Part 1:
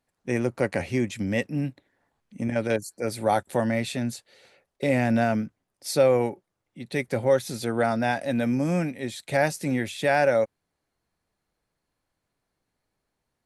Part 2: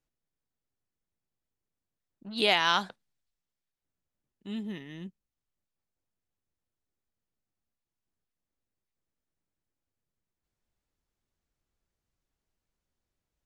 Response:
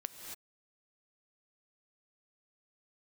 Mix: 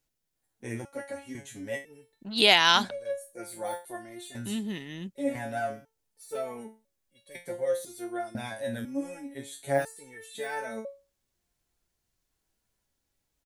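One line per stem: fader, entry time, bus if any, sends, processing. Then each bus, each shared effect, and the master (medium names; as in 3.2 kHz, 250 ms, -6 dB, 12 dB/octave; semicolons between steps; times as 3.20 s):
+2.0 dB, 0.35 s, no send, de-esser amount 70%; graphic EQ with 31 bands 160 Hz -10 dB, 2.5 kHz -7 dB, 5 kHz -11 dB, 10 kHz +5 dB; resonator arpeggio 2 Hz 110–560 Hz
+3.0 dB, 0.00 s, no send, none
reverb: none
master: treble shelf 3.5 kHz +7.5 dB; band-stop 1.2 kHz, Q 17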